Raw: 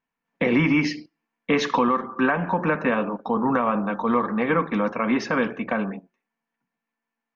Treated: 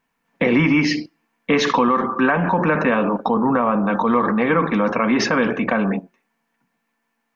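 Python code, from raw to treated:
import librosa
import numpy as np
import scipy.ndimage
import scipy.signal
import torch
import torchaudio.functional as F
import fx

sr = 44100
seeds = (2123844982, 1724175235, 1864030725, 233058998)

p1 = fx.high_shelf(x, sr, hz=2700.0, db=-10.5, at=(3.34, 3.86))
p2 = fx.over_compress(p1, sr, threshold_db=-31.0, ratio=-1.0)
p3 = p1 + (p2 * 10.0 ** (-1.0 / 20.0))
y = p3 * 10.0 ** (2.5 / 20.0)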